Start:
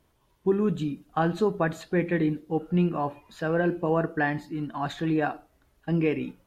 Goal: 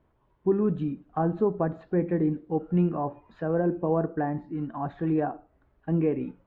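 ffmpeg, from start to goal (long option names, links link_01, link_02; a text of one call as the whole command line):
ffmpeg -i in.wav -filter_complex "[0:a]lowpass=1600,acrossover=split=1100[link_01][link_02];[link_02]acompressor=threshold=-49dB:ratio=5[link_03];[link_01][link_03]amix=inputs=2:normalize=0" out.wav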